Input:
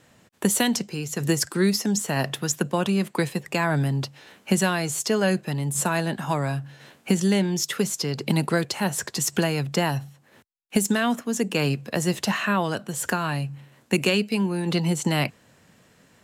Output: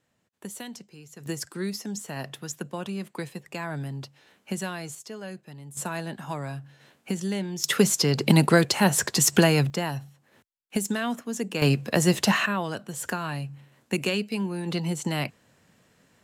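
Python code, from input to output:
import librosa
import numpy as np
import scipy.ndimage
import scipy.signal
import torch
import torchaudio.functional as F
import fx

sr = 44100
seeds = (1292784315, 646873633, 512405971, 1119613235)

y = fx.gain(x, sr, db=fx.steps((0.0, -17.0), (1.26, -10.0), (4.95, -16.5), (5.77, -8.0), (7.64, 4.5), (9.7, -5.5), (11.62, 3.0), (12.46, -5.0)))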